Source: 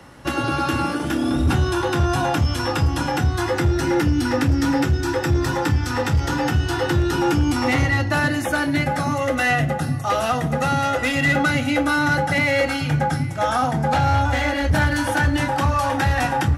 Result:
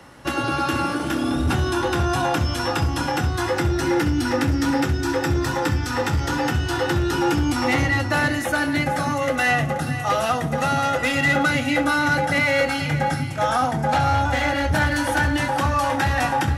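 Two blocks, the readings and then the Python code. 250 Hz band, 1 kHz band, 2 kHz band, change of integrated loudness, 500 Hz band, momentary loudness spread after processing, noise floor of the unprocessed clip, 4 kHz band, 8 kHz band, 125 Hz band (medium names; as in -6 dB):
-1.5 dB, 0.0 dB, 0.0 dB, -1.0 dB, -0.5 dB, 4 LU, -26 dBFS, 0.0 dB, +0.5 dB, -3.0 dB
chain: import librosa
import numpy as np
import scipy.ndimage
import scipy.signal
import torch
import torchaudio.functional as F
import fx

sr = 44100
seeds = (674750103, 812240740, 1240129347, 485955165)

p1 = fx.low_shelf(x, sr, hz=240.0, db=-4.0)
y = p1 + fx.echo_single(p1, sr, ms=480, db=-12.0, dry=0)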